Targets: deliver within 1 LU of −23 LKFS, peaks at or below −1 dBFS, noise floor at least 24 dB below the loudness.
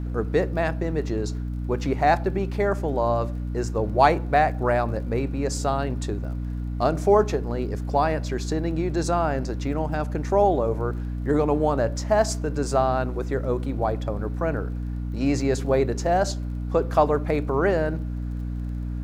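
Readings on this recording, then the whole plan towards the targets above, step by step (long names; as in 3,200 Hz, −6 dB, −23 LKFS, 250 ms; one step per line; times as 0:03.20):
crackle rate 25 per second; mains hum 60 Hz; hum harmonics up to 300 Hz; level of the hum −27 dBFS; integrated loudness −24.5 LKFS; sample peak −4.0 dBFS; target loudness −23.0 LKFS
→ click removal
mains-hum notches 60/120/180/240/300 Hz
level +1.5 dB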